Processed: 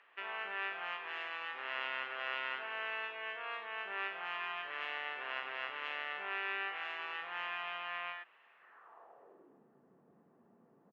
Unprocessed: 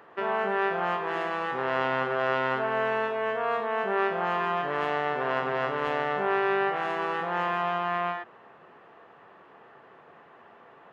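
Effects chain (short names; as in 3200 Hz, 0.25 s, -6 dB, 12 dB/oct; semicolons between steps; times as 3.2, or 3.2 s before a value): band-pass sweep 2600 Hz -> 210 Hz, 8.52–9.64; harmoniser -5 st -16 dB; gain -1 dB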